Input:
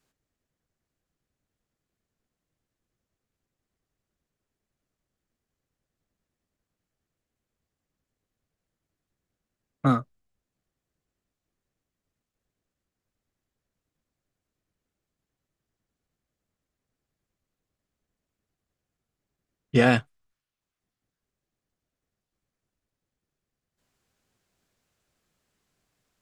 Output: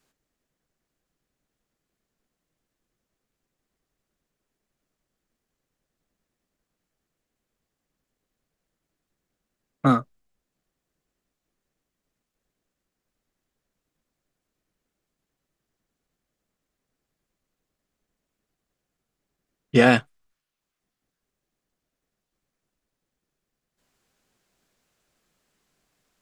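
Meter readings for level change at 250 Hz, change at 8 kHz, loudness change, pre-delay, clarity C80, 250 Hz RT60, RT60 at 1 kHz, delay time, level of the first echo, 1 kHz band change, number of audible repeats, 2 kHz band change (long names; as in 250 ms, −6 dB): +3.0 dB, can't be measured, +3.0 dB, no reverb audible, no reverb audible, no reverb audible, no reverb audible, no echo audible, no echo audible, +4.0 dB, no echo audible, +4.0 dB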